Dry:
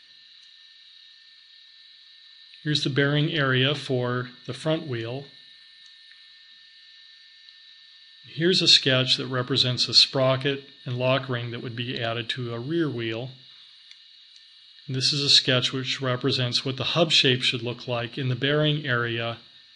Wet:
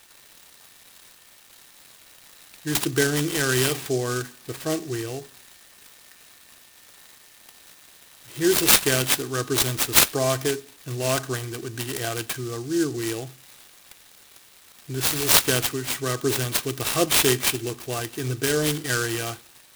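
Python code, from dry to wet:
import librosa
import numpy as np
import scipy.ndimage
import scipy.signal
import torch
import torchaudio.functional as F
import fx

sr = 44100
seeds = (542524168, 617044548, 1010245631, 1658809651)

y = x + 0.61 * np.pad(x, (int(2.6 * sr / 1000.0), 0))[:len(x)]
y = fx.noise_mod_delay(y, sr, seeds[0], noise_hz=5900.0, depth_ms=0.071)
y = F.gain(torch.from_numpy(y), -1.0).numpy()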